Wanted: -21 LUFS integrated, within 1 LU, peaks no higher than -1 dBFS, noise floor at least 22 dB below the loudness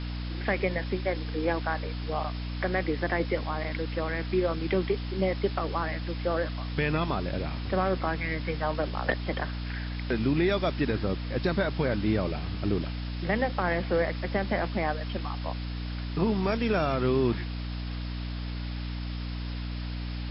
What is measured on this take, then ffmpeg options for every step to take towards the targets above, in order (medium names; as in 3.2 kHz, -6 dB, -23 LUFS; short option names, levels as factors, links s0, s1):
hum 60 Hz; highest harmonic 300 Hz; hum level -31 dBFS; noise floor -34 dBFS; noise floor target -52 dBFS; loudness -30.0 LUFS; peak level -13.0 dBFS; loudness target -21.0 LUFS
-> -af "bandreject=f=60:t=h:w=6,bandreject=f=120:t=h:w=6,bandreject=f=180:t=h:w=6,bandreject=f=240:t=h:w=6,bandreject=f=300:t=h:w=6"
-af "afftdn=nr=18:nf=-34"
-af "volume=2.82"